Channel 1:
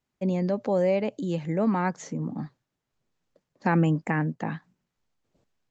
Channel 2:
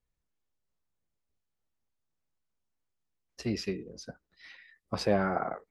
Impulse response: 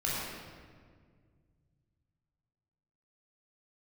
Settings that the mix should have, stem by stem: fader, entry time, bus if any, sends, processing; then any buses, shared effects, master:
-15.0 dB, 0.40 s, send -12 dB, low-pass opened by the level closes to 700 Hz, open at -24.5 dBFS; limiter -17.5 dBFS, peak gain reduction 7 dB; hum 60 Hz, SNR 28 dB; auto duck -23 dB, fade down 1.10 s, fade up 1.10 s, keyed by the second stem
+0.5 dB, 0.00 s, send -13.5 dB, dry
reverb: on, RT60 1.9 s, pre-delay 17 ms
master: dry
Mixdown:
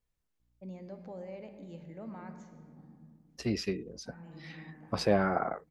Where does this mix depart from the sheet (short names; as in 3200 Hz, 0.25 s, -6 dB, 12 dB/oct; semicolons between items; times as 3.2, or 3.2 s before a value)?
stem 1 -15.0 dB -> -21.0 dB; stem 2: send off